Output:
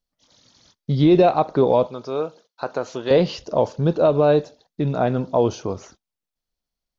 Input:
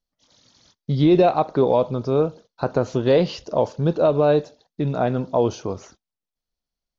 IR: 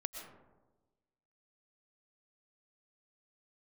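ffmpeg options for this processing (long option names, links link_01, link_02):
-filter_complex "[0:a]asettb=1/sr,asplit=3[link_01][link_02][link_03];[link_01]atrim=end=1.874[link_04];[link_02]atrim=start=1.87:end=3.11,asetpts=PTS-STARTPTS,afade=type=in:duration=0.004:curve=qsin,afade=type=out:start_time=1.236:duration=0.004:curve=qsin,highpass=frequency=780:poles=1[link_05];[link_03]atrim=start=3.106[link_06];[link_04][link_05]acrossfade=duration=0.004:curve1=hsin:curve2=qsin[link_07];[link_07][link_06]acrossfade=duration=0.004:curve1=qsin:curve2=hsin,volume=1dB"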